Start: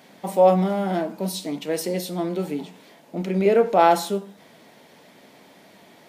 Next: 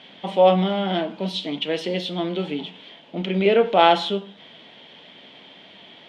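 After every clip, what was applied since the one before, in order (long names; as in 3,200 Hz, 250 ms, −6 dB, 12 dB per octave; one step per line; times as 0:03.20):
low-pass with resonance 3,200 Hz, resonance Q 6.7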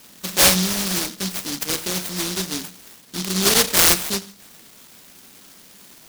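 short delay modulated by noise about 4,600 Hz, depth 0.48 ms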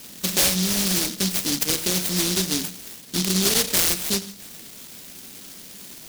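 parametric band 1,100 Hz −6 dB 1.8 octaves
downward compressor 4 to 1, threshold −25 dBFS, peak gain reduction 12.5 dB
level +6 dB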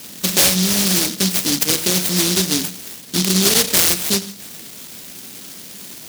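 high-pass filter 65 Hz
level +5.5 dB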